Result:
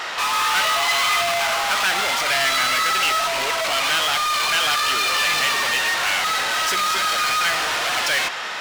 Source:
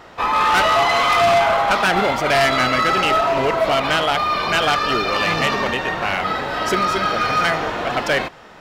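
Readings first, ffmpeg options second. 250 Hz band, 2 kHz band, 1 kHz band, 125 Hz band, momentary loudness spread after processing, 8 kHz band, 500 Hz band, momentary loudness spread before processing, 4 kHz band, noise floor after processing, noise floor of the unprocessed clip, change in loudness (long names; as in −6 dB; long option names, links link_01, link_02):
−14.0 dB, +0.5 dB, −4.5 dB, −15.0 dB, 3 LU, +9.5 dB, −9.5 dB, 6 LU, +3.5 dB, −28 dBFS, −42 dBFS, −1.0 dB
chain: -filter_complex "[0:a]asplit=2[link_01][link_02];[link_02]highpass=frequency=720:poles=1,volume=30dB,asoftclip=type=tanh:threshold=-12dB[link_03];[link_01][link_03]amix=inputs=2:normalize=0,lowpass=frequency=5700:poles=1,volume=-6dB,tiltshelf=frequency=1100:gain=-8,volume=-6.5dB"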